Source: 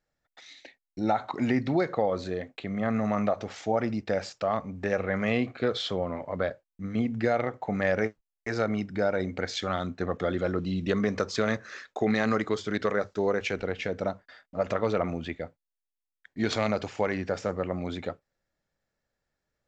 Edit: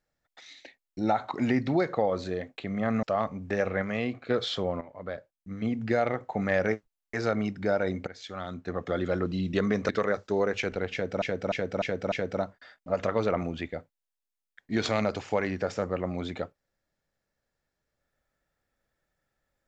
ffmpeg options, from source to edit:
-filter_complex "[0:a]asplit=11[a][b][c][d][e][f][g][h][i][j][k];[a]atrim=end=3.032[l];[b]atrim=start=4.358:end=5.152[m];[c]atrim=start=5.148:end=5.632,asetpts=PTS-STARTPTS,volume=-4dB[n];[d]atrim=start=5.628:end=6.14,asetpts=PTS-STARTPTS,afade=t=out:st=0.508:d=0.004:c=hsin:silence=0.237137[o];[e]atrim=start=6.14:end=9.4,asetpts=PTS-STARTPTS,afade=t=in:d=1.19:silence=0.237137,afade=t=out:st=3.256:d=0.004:c=hsin:silence=0.158489[p];[f]atrim=start=9.4:end=11.222,asetpts=PTS-STARTPTS,afade=t=in:d=1.02:silence=0.158489[q];[g]atrim=start=12.758:end=14.092[r];[h]atrim=start=13.788:end=14.092[s];[i]atrim=start=13.788:end=14.092[t];[j]atrim=start=13.788:end=14.092[u];[k]atrim=start=13.788[v];[l][m]acrossfade=d=0.004:c1=hsin:c2=hsin[w];[w][n]acrossfade=d=0.004:c1=hsin:c2=hsin[x];[o][p][q]concat=n=3:v=0:a=1[y];[x][y]acrossfade=d=0.004:c1=hsin:c2=hsin[z];[z][r]acrossfade=d=0.004:c1=hsin:c2=hsin[aa];[aa][s]acrossfade=d=0.004:c1=hsin:c2=hsin[ab];[ab][t]acrossfade=d=0.004:c1=hsin:c2=hsin[ac];[ac][u]acrossfade=d=0.004:c1=hsin:c2=hsin[ad];[ad][v]acrossfade=d=0.004:c1=hsin:c2=hsin"

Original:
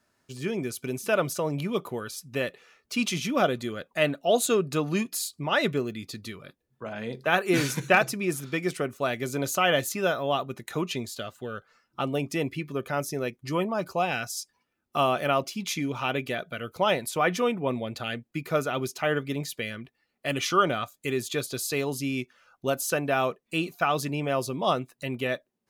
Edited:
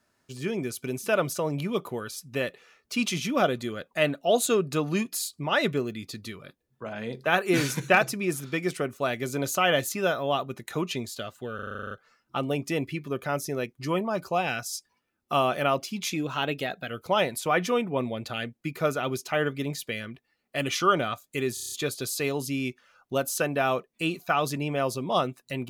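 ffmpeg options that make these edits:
-filter_complex "[0:a]asplit=18[a][b][c][d][e][f][g][h][i][j][k][l][m][n][o][p][q][r];[a]atrim=end=11.592[s];[b]atrim=start=11.548:end=11.592[t];[c]atrim=start=11.548:end=11.592[u];[d]atrim=start=11.548:end=11.592[v];[e]atrim=start=11.548:end=11.592[w];[f]atrim=start=11.548:end=11.592[x];[g]atrim=start=11.548:end=11.592[y];[h]atrim=start=11.548:end=11.592[z];[i]atrim=start=11.548:end=11.592[aa];[j]atrim=start=11.548:end=15.764[ab];[k]atrim=start=15.76:end=16.6,asetpts=PTS-STARTPTS,asetrate=47628,aresample=44100[ac];[l]atrim=start=16.596:end=21.272[ad];[m]atrim=start=21.238:end=21.272[ae];[n]atrim=start=21.238:end=21.272[af];[o]atrim=start=21.238:end=21.272[ag];[p]atrim=start=21.238:end=21.272[ah];[q]atrim=start=21.238:end=21.272[ai];[r]atrim=start=21.238[aj];[s][t]acrossfade=d=0.004:c1=hsin:c2=hsin[ak];[ak][u]acrossfade=d=0.004:c1=hsin:c2=hsin[al];[al][v]acrossfade=d=0.004:c1=hsin:c2=hsin[am];[am][w]acrossfade=d=0.004:c1=hsin:c2=hsin[an];[an][x]acrossfade=d=0.004:c1=hsin:c2=hsin[ao];[ao][y]acrossfade=d=0.004:c1=hsin:c2=hsin[ap];[ap][z]acrossfade=d=0.004:c1=hsin:c2=hsin[aq];[aq][aa]acrossfade=d=0.004:c1=hsin:c2=hsin[ar];[ar][ab]acrossfade=d=0.004:c1=hsin:c2=hsin[as];[as][ac]acrossfade=d=0.004:c1=hsin:c2=hsin[at];[at][ad]acrossfade=d=0.004:c1=hsin:c2=hsin[au];[au][ae]acrossfade=d=0.004:c1=hsin:c2=hsin[av];[av][af]acrossfade=d=0.004:c1=hsin:c2=hsin[aw];[aw][ag]acrossfade=d=0.004:c1=hsin:c2=hsin[ax];[ax][ah]acrossfade=d=0.004:c1=hsin:c2=hsin[ay];[ay][ai]acrossfade=d=0.004:c1=hsin:c2=hsin[az];[az][aj]acrossfade=d=0.004:c1=hsin:c2=hsin"

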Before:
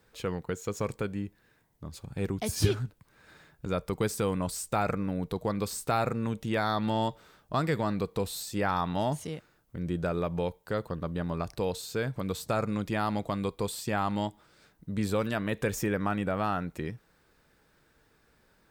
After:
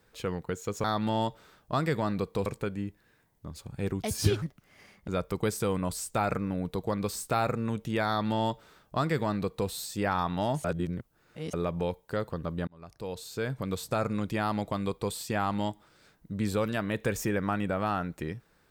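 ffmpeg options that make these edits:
-filter_complex "[0:a]asplit=8[a][b][c][d][e][f][g][h];[a]atrim=end=0.842[i];[b]atrim=start=6.648:end=8.272[j];[c]atrim=start=0.838:end=2.804[k];[d]atrim=start=2.8:end=3.65,asetpts=PTS-STARTPTS,asetrate=57330,aresample=44100[l];[e]atrim=start=3.646:end=9.222[m];[f]atrim=start=9.218:end=10.112,asetpts=PTS-STARTPTS,areverse[n];[g]atrim=start=10.108:end=11.25,asetpts=PTS-STARTPTS,afade=t=out:st=1.138:d=0.004:c=hsin[o];[h]atrim=start=11.25,asetpts=PTS-STARTPTS,afade=t=in:d=0.87[p];[i][j]acrossfade=d=0.004:c1=hsin:c2=hsin[q];[q][k]acrossfade=d=0.004:c1=hsin:c2=hsin[r];[r][l]acrossfade=d=0.004:c1=hsin:c2=hsin[s];[s][m]acrossfade=d=0.004:c1=hsin:c2=hsin[t];[t][n]acrossfade=d=0.004:c1=hsin:c2=hsin[u];[o][p]concat=n=2:v=0:a=1[v];[u][v]acrossfade=d=0.004:c1=hsin:c2=hsin"

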